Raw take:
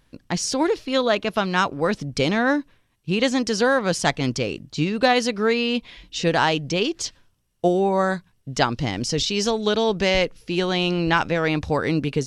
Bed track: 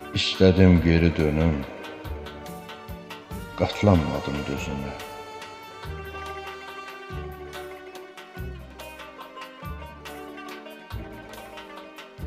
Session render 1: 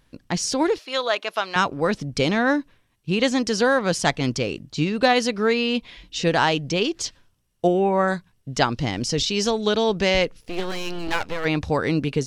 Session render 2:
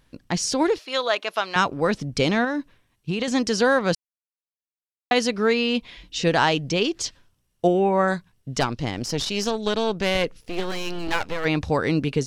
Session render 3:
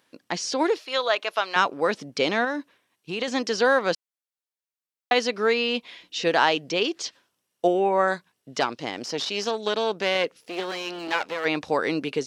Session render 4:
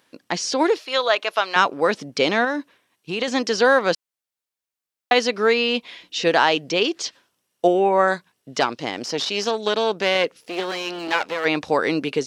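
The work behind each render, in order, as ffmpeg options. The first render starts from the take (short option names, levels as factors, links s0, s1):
-filter_complex "[0:a]asettb=1/sr,asplit=3[s0][s1][s2];[s0]atrim=end=0.784[s3];[s1]atrim=start=0.78:end=1.56,asetpts=PTS-STARTPTS,afade=t=in:d=0.004:c=qsin,afade=t=out:st=0.776:d=0.004:c=qsin,highpass=620[s4];[s2]atrim=start=1.556[s5];[s3][s4]acrossfade=d=0.004:c1=hsin:c2=qsin[s6];[s6][s5]acrossfade=d=0.004:c1=qsin:c2=hsin,asettb=1/sr,asplit=3[s7][s8][s9];[s7]atrim=end=7.674[s10];[s8]atrim=start=7.67:end=8.08,asetpts=PTS-STARTPTS,afade=t=in:d=0.004:c=qsin,afade=t=out:st=0.406:d=0.004:c=qsin,highshelf=f=3400:t=q:w=3:g=-6.5[s11];[s9]atrim=start=8.076[s12];[s10][s11]acrossfade=d=0.004:c1=hsin:c2=qsin[s13];[s13][s12]acrossfade=d=0.004:c1=qsin:c2=hsin,asplit=3[s14][s15][s16];[s14]afade=t=out:st=10.4:d=0.02[s17];[s15]aeval=exprs='max(val(0),0)':c=same,afade=t=in:st=10.4:d=0.02,afade=t=out:st=11.44:d=0.02[s18];[s16]afade=t=in:st=11.44:d=0.02[s19];[s17][s18][s19]amix=inputs=3:normalize=0"
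-filter_complex "[0:a]asettb=1/sr,asplit=3[s0][s1][s2];[s0]atrim=end=2.444[s3];[s1]atrim=start=2.44:end=3.28,asetpts=PTS-STARTPTS,afade=t=in:d=0.004:c=qsin,afade=t=out:st=0.836:d=0.004:c=qsin,acompressor=threshold=0.1:ratio=10:attack=3.2:release=140:knee=1:detection=peak[s4];[s2]atrim=start=3.276[s5];[s3][s4]acrossfade=d=0.004:c1=hsin:c2=qsin[s6];[s6][s5]acrossfade=d=0.004:c1=qsin:c2=hsin,asettb=1/sr,asplit=3[s7][s8][s9];[s7]atrim=end=8.604[s10];[s8]atrim=start=8.6:end=10.24,asetpts=PTS-STARTPTS,afade=t=in:d=0.004:c=qsin,afade=t=out:st=1.636:d=0.004:c=qsin,aeval=exprs='(tanh(4.47*val(0)+0.7)-tanh(0.7))/4.47':c=same[s11];[s9]atrim=start=10.236[s12];[s10][s11]acrossfade=d=0.004:c1=hsin:c2=qsin[s13];[s13][s12]acrossfade=d=0.004:c1=qsin:c2=hsin,asplit=3[s14][s15][s16];[s14]atrim=end=3.95,asetpts=PTS-STARTPTS,afade=t=out:st=3.946:d=0.004:c=hsin[s17];[s15]atrim=start=3.95:end=5.11,asetpts=PTS-STARTPTS,volume=0[s18];[s16]atrim=start=5.11,asetpts=PTS-STARTPTS,afade=t=in:d=0.004:c=hsin[s19];[s17][s18][s19]concat=n=3:v=0:a=1"
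-filter_complex "[0:a]acrossover=split=6100[s0][s1];[s1]acompressor=threshold=0.00316:ratio=4:attack=1:release=60[s2];[s0][s2]amix=inputs=2:normalize=0,highpass=340"
-af "volume=1.58,alimiter=limit=0.708:level=0:latency=1"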